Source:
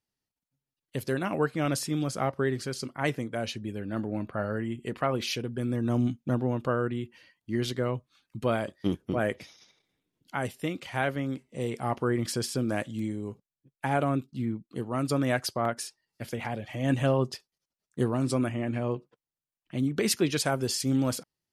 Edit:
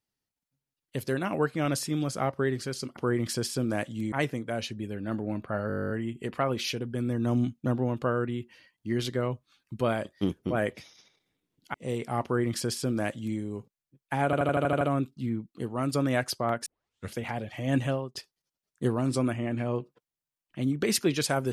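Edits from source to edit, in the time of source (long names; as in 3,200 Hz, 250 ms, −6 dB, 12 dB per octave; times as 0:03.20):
0:04.53: stutter 0.02 s, 12 plays
0:10.37–0:11.46: remove
0:11.96–0:13.11: duplicate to 0:02.97
0:13.97: stutter 0.08 s, 8 plays
0:15.82: tape start 0.48 s
0:16.94–0:17.31: fade out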